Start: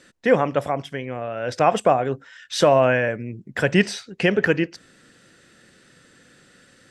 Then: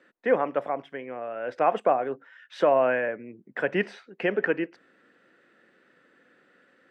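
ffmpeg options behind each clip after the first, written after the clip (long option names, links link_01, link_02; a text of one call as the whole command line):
ffmpeg -i in.wav -filter_complex "[0:a]acrossover=split=230 2600:gain=0.0708 1 0.0708[link_01][link_02][link_03];[link_01][link_02][link_03]amix=inputs=3:normalize=0,volume=-4.5dB" out.wav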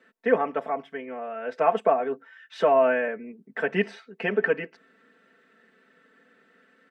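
ffmpeg -i in.wav -af "aecho=1:1:4.5:0.97,volume=-2dB" out.wav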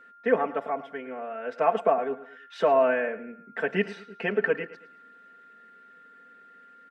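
ffmpeg -i in.wav -af "aecho=1:1:109|218|327:0.15|0.0598|0.0239,aeval=exprs='val(0)+0.00355*sin(2*PI*1400*n/s)':channel_layout=same,volume=-1.5dB" out.wav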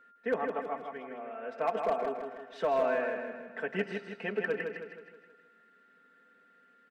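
ffmpeg -i in.wav -filter_complex "[0:a]volume=14.5dB,asoftclip=hard,volume=-14.5dB,asplit=2[link_01][link_02];[link_02]aecho=0:1:159|318|477|636|795|954:0.531|0.255|0.122|0.0587|0.0282|0.0135[link_03];[link_01][link_03]amix=inputs=2:normalize=0,volume=-7.5dB" out.wav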